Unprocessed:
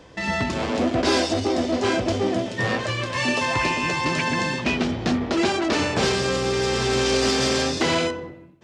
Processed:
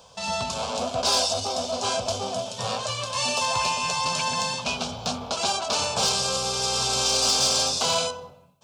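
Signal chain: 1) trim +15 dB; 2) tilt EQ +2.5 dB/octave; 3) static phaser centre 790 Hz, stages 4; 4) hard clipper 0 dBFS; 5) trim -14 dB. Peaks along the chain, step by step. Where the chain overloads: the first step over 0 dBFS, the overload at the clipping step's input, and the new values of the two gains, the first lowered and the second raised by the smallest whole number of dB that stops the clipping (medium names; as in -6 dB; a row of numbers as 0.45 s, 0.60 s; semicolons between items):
+5.5 dBFS, +8.0 dBFS, +7.0 dBFS, 0.0 dBFS, -14.0 dBFS; step 1, 7.0 dB; step 1 +8 dB, step 5 -7 dB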